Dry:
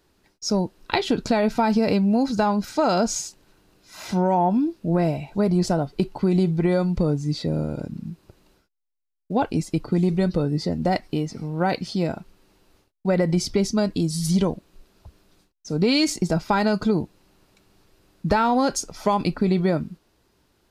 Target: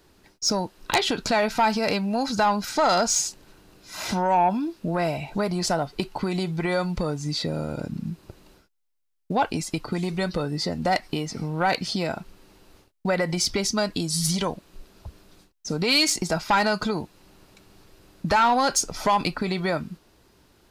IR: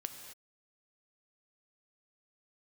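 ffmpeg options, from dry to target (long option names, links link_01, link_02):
-filter_complex "[0:a]acrossover=split=710[link_01][link_02];[link_01]acompressor=threshold=-32dB:ratio=6[link_03];[link_03][link_02]amix=inputs=2:normalize=0,aeval=exprs='0.562*sin(PI/2*3.16*val(0)/0.562)':channel_layout=same,volume=-8dB"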